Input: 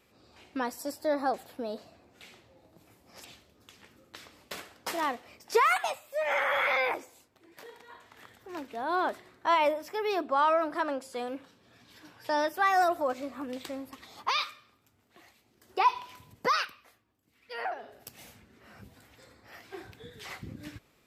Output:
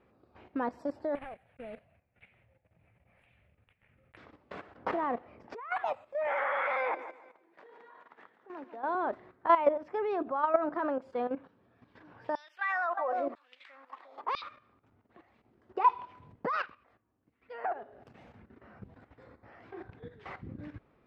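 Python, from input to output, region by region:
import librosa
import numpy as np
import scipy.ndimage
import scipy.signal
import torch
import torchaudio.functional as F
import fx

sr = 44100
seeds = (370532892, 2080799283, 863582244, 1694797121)

y = fx.chain(x, sr, fx.block_float(bits=3),
    fx.tremolo(hz=1.7, depth=0.53),
    fx.curve_eq(hz=(130.0, 330.0, 570.0, 1100.0, 2400.0, 6000.0, 10000.0, 14000.0), db=(0, -18, -7, -12, 6, -24, 14, -16)), at=(1.15, 4.17))
y = fx.chain(y, sr, fx.lowpass(hz=2700.0, slope=6),
    fx.over_compress(threshold_db=-31.0, ratio=-0.5), at=(4.77, 5.72))
y = fx.chain(y, sr, fx.highpass(hz=160.0, slope=24),
    fx.low_shelf(hz=400.0, db=-8.5),
    fx.echo_feedback(ms=145, feedback_pct=38, wet_db=-11.5), at=(6.27, 8.95))
y = fx.chain(y, sr, fx.echo_single(ms=354, db=-15.5),
    fx.filter_lfo_highpass(shape='saw_down', hz=1.0, low_hz=310.0, high_hz=4800.0, q=2.0), at=(12.35, 14.42))
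y = scipy.signal.sosfilt(scipy.signal.butter(2, 1400.0, 'lowpass', fs=sr, output='sos'), y)
y = fx.level_steps(y, sr, step_db=12)
y = y * librosa.db_to_amplitude(5.0)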